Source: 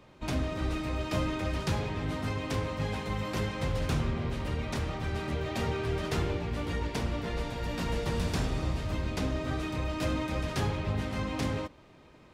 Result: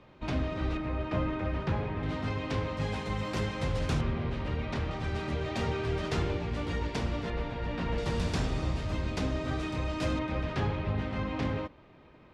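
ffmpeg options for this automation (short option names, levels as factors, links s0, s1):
-af "asetnsamples=n=441:p=0,asendcmd='0.77 lowpass f 2200;2.03 lowpass f 4600;2.77 lowpass f 8500;4.01 lowpass f 3900;4.91 lowpass f 6900;7.3 lowpass f 3000;7.98 lowpass f 7800;10.19 lowpass f 3200',lowpass=3900"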